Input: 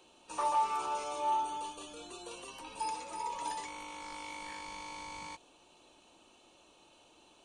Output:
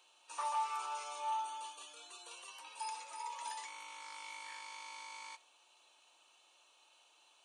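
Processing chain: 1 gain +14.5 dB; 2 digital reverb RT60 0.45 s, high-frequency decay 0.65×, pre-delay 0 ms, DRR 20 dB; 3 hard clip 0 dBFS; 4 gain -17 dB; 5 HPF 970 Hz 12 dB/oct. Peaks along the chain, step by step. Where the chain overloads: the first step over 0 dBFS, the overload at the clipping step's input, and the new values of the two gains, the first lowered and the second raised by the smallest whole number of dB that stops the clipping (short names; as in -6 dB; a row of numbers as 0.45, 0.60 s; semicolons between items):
-6.0, -6.0, -6.0, -23.0, -26.5 dBFS; no overload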